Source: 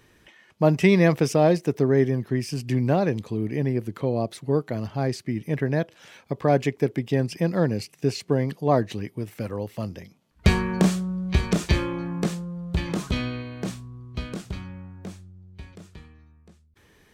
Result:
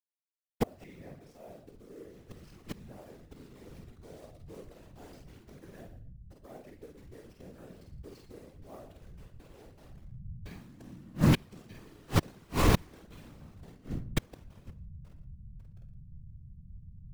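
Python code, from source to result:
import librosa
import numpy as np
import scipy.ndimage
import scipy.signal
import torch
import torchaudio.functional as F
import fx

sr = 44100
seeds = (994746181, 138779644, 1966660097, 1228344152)

y = fx.delta_hold(x, sr, step_db=-26.5)
y = fx.peak_eq(y, sr, hz=160.0, db=-2.5, octaves=2.8)
y = fx.doubler(y, sr, ms=49.0, db=-3.0)
y = fx.echo_feedback(y, sr, ms=115, feedback_pct=15, wet_db=-13.5)
y = fx.room_shoebox(y, sr, seeds[0], volume_m3=34.0, walls='mixed', distance_m=0.33)
y = fx.rider(y, sr, range_db=5, speed_s=0.5)
y = fx.hum_notches(y, sr, base_hz=50, count=5)
y = fx.gate_flip(y, sr, shuts_db=-17.0, range_db=-35)
y = fx.whisperise(y, sr, seeds[1])
y = y * librosa.db_to_amplitude(4.5)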